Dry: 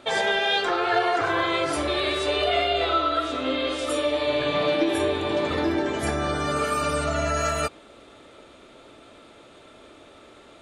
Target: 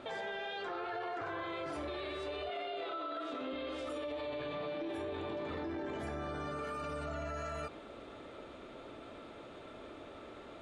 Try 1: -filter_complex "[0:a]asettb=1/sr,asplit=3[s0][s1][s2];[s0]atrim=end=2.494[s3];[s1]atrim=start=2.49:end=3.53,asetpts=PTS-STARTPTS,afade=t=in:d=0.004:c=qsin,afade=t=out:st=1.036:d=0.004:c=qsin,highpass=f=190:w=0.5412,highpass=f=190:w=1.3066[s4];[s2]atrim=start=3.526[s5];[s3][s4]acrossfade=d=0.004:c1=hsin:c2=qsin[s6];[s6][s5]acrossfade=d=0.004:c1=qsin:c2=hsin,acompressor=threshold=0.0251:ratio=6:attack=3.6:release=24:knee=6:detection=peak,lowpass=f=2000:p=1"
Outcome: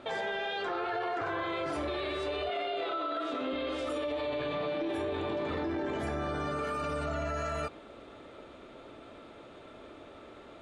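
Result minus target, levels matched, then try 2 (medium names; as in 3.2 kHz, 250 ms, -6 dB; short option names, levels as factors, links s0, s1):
compression: peak gain reduction -6 dB
-filter_complex "[0:a]asettb=1/sr,asplit=3[s0][s1][s2];[s0]atrim=end=2.494[s3];[s1]atrim=start=2.49:end=3.53,asetpts=PTS-STARTPTS,afade=t=in:d=0.004:c=qsin,afade=t=out:st=1.036:d=0.004:c=qsin,highpass=f=190:w=0.5412,highpass=f=190:w=1.3066[s4];[s2]atrim=start=3.526[s5];[s3][s4]acrossfade=d=0.004:c1=hsin:c2=qsin[s6];[s6][s5]acrossfade=d=0.004:c1=qsin:c2=hsin,acompressor=threshold=0.0106:ratio=6:attack=3.6:release=24:knee=6:detection=peak,lowpass=f=2000:p=1"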